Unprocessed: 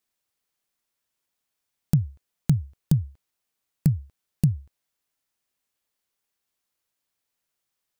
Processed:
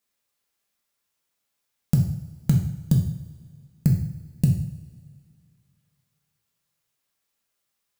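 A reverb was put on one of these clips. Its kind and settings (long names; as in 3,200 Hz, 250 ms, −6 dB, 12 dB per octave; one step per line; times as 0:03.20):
coupled-rooms reverb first 0.62 s, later 2.3 s, from −18 dB, DRR −0.5 dB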